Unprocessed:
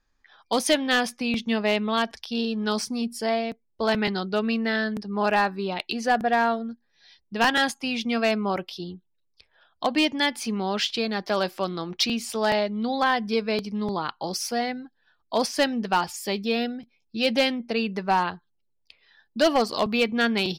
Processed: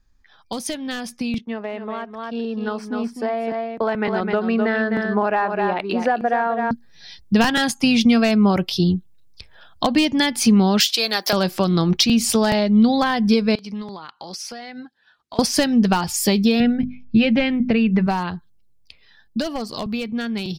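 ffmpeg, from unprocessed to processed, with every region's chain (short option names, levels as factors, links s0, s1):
-filter_complex "[0:a]asettb=1/sr,asplit=3[s0][s1][s2];[s0]atrim=end=1.384[s3];[s1]atrim=start=1.38:end=6.71,asetpts=PTS-STARTPTS,afade=t=in:d=0.004:c=qsin,afade=t=out:st=5.326:d=0.004:c=qsin,agate=range=0.0224:threshold=0.01:ratio=3:release=100:detection=peak,acrossover=split=320 2100:gain=0.112 1 0.0708[s4][s5][s6];[s4][s5][s6]amix=inputs=3:normalize=0,aecho=1:1:256:0.398,atrim=end_sample=235053[s7];[s2]atrim=start=6.706[s8];[s3][s7]acrossfade=d=0.004:c1=hsin:c2=qsin[s9];[s9][s8]acrossfade=d=0.004:c1=qsin:c2=hsin,asettb=1/sr,asplit=3[s10][s11][s12];[s10]atrim=end=10.804[s13];[s11]atrim=start=10.8:end=11.33,asetpts=PTS-STARTPTS,afade=t=in:d=0.004:c=qsin,afade=t=out:st=0.526:d=0.004:c=qsin,highpass=460,aemphasis=mode=production:type=bsi[s14];[s12]atrim=start=11.326[s15];[s13][s14]acrossfade=d=0.004:c1=hsin:c2=qsin[s16];[s16][s15]acrossfade=d=0.004:c1=qsin:c2=hsin,asettb=1/sr,asplit=3[s17][s18][s19];[s17]atrim=end=13.554[s20];[s18]atrim=start=13.55:end=15.39,asetpts=PTS-STARTPTS,afade=t=in:d=0.004:c=qsin,afade=t=out:st=1.836:d=0.004:c=qsin,highpass=f=1200:p=1,aemphasis=mode=reproduction:type=50fm,acompressor=threshold=0.00794:ratio=12:attack=3.2:release=140:knee=1:detection=peak[s21];[s19]atrim=start=15.386[s22];[s20][s21]acrossfade=d=0.004:c1=hsin:c2=qsin[s23];[s23][s22]acrossfade=d=0.004:c1=qsin:c2=hsin,asettb=1/sr,asplit=3[s24][s25][s26];[s24]atrim=end=16.604[s27];[s25]atrim=start=16.6:end=18.07,asetpts=PTS-STARTPTS,afade=t=in:d=0.004:c=qsin,afade=t=out:st=1.466:d=0.004:c=qsin,lowpass=f=2300:t=q:w=1.9,lowshelf=f=180:g=11.5,bandreject=f=50:t=h:w=6,bandreject=f=100:t=h:w=6,bandreject=f=150:t=h:w=6,bandreject=f=200:t=h:w=6,bandreject=f=250:t=h:w=6,bandreject=f=300:t=h:w=6[s28];[s26]atrim=start=18.066[s29];[s27][s28]acrossfade=d=0.004:c1=hsin:c2=qsin[s30];[s30][s29]acrossfade=d=0.004:c1=qsin:c2=hsin,acompressor=threshold=0.0398:ratio=6,bass=f=250:g=13,treble=f=4000:g=5,dynaudnorm=f=600:g=11:m=3.76"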